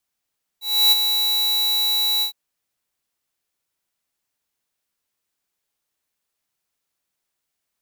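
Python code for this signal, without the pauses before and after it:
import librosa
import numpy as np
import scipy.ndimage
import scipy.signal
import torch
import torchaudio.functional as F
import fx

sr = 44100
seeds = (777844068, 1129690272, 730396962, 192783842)

y = fx.adsr_tone(sr, wave='square', hz=3930.0, attack_ms=308.0, decay_ms=23.0, sustain_db=-7.0, held_s=1.61, release_ms=102.0, level_db=-13.0)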